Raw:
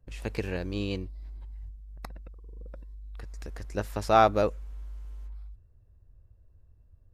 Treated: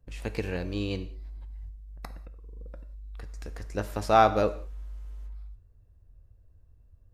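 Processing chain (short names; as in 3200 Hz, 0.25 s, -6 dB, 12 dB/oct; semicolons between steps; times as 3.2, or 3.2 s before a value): non-linear reverb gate 0.22 s falling, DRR 10 dB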